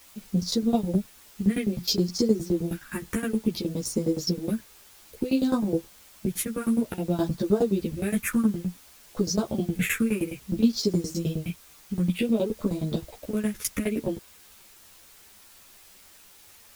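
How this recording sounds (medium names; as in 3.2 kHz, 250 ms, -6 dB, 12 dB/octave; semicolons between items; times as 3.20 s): phasing stages 4, 0.57 Hz, lowest notch 680–2500 Hz; tremolo saw down 9.6 Hz, depth 95%; a quantiser's noise floor 10-bit, dither triangular; a shimmering, thickened sound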